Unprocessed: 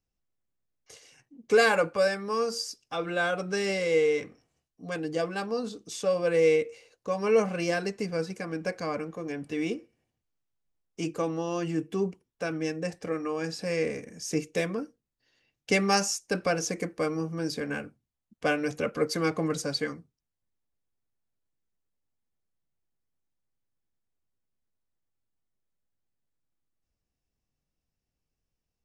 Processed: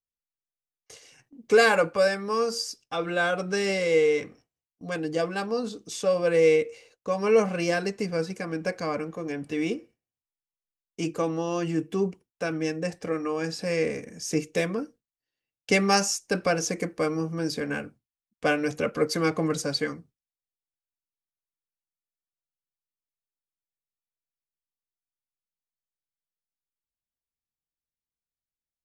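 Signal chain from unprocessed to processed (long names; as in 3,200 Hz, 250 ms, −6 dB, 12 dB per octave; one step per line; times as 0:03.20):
noise gate with hold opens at −47 dBFS
level +2.5 dB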